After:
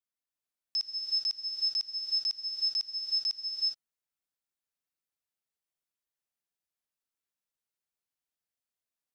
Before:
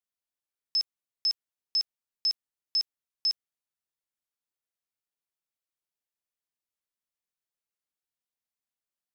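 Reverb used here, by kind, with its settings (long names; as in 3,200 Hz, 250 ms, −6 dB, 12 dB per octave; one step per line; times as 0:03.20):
reverb whose tail is shaped and stops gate 440 ms rising, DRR −1 dB
level −4.5 dB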